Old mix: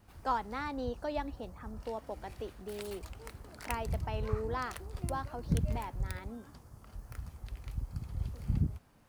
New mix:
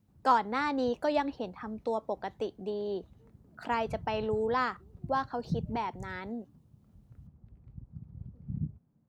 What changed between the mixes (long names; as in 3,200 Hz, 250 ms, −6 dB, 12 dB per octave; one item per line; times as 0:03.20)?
speech +7.5 dB
background: add resonant band-pass 170 Hz, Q 1.8